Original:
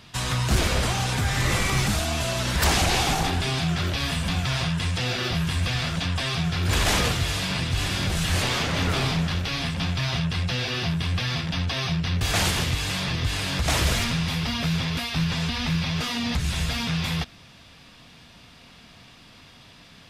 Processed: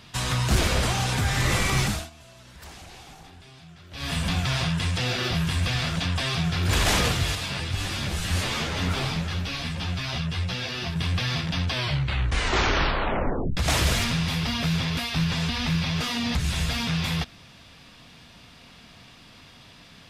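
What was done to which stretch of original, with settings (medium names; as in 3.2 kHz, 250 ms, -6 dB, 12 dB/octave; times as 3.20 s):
1.83–4.17 s: dip -23 dB, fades 0.27 s
7.35–10.96 s: three-phase chorus
11.68 s: tape stop 1.89 s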